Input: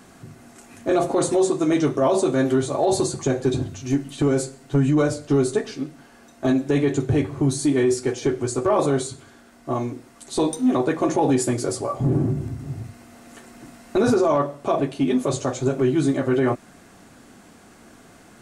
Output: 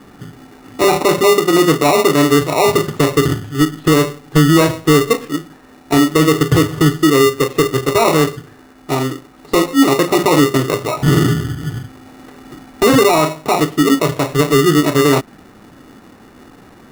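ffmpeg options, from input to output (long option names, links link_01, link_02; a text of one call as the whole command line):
ffmpeg -i in.wav -filter_complex "[0:a]lowpass=1200,acrossover=split=710[link_01][link_02];[link_01]acrusher=samples=30:mix=1:aa=0.000001[link_03];[link_03][link_02]amix=inputs=2:normalize=0,asetrate=48000,aresample=44100,volume=8.5dB" out.wav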